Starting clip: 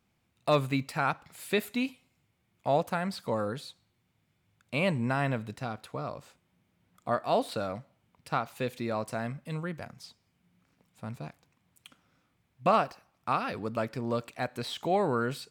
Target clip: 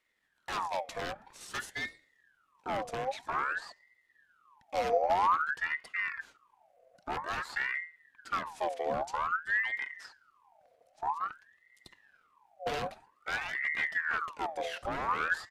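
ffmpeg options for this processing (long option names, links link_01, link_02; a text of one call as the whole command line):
ffmpeg -i in.wav -filter_complex "[0:a]bandreject=frequency=60:width_type=h:width=6,bandreject=frequency=120:width_type=h:width=6,bandreject=frequency=180:width_type=h:width=6,bandreject=frequency=240:width_type=h:width=6,bandreject=frequency=300:width_type=h:width=6,bandreject=frequency=360:width_type=h:width=6,asubboost=boost=10.5:cutoff=110,acrossover=split=190[link_01][link_02];[link_02]aeval=exprs='0.0376*(abs(mod(val(0)/0.0376+3,4)-2)-1)':channel_layout=same[link_03];[link_01][link_03]amix=inputs=2:normalize=0,asetrate=29433,aresample=44100,atempo=1.49831,aeval=exprs='val(0)*sin(2*PI*1300*n/s+1300*0.55/0.51*sin(2*PI*0.51*n/s))':channel_layout=same" out.wav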